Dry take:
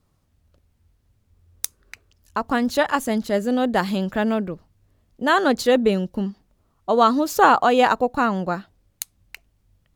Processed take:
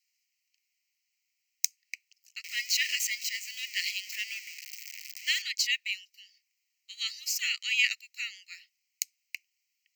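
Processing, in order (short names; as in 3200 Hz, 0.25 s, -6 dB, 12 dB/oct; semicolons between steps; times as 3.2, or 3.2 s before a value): 2.44–5.42 zero-crossing step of -27.5 dBFS; fixed phaser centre 2400 Hz, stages 8; dynamic EQ 3300 Hz, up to +4 dB, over -34 dBFS, Q 0.7; steep high-pass 1900 Hz 72 dB/oct; gain +3 dB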